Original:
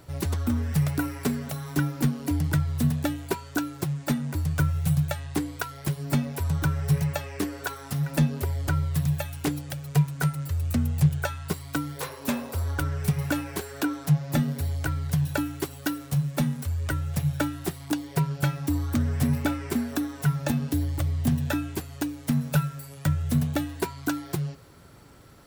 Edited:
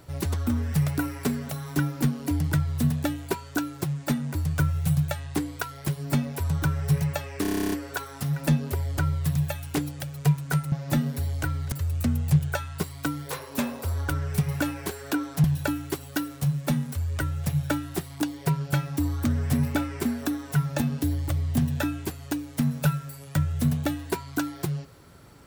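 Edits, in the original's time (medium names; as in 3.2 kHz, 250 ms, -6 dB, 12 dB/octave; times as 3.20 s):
7.42 s: stutter 0.03 s, 11 plays
14.14–15.14 s: move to 10.42 s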